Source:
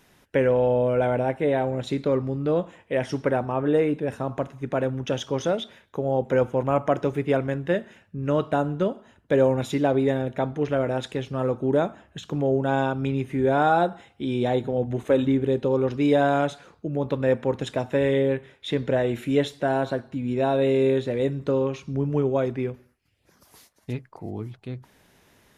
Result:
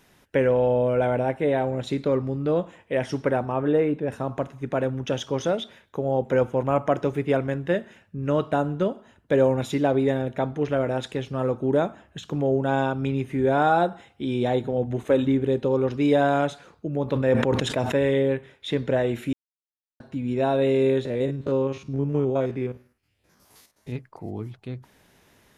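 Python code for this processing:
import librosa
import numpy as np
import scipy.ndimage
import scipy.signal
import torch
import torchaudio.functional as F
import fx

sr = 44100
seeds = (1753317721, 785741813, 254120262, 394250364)

y = fx.high_shelf(x, sr, hz=4000.0, db=-10.0, at=(3.72, 4.12))
y = fx.sustainer(y, sr, db_per_s=44.0, at=(17.04, 18.1))
y = fx.spec_steps(y, sr, hold_ms=50, at=(21.05, 23.96))
y = fx.edit(y, sr, fx.silence(start_s=19.33, length_s=0.67), tone=tone)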